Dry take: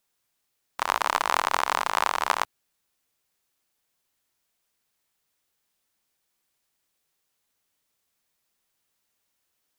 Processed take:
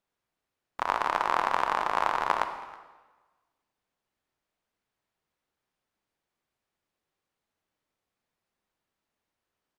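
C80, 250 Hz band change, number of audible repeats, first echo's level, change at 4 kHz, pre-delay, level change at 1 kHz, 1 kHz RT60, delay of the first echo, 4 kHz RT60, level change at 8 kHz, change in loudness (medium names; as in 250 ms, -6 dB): 10.0 dB, +1.0 dB, 1, -21.5 dB, -8.5 dB, 34 ms, -1.5 dB, 1.3 s, 322 ms, 1.1 s, -14.0 dB, -2.0 dB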